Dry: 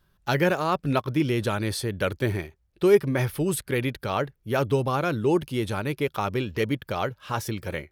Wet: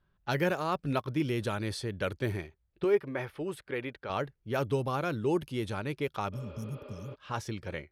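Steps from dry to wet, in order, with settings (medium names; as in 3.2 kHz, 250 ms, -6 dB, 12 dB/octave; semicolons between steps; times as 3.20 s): level-controlled noise filter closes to 2.8 kHz, open at -20.5 dBFS; 2.84–4.10 s: tone controls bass -11 dB, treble -15 dB; 6.36–7.12 s: spectral replace 250–5000 Hz before; trim -6.5 dB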